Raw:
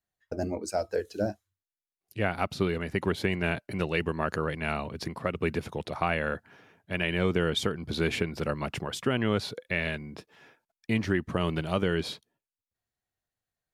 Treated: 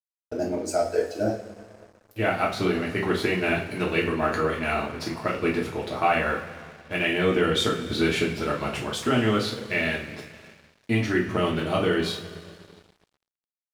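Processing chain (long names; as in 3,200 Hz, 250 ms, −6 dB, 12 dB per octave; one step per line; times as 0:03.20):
coupled-rooms reverb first 0.34 s, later 2.9 s, from −18 dB, DRR −4.5 dB
dead-zone distortion −49 dBFS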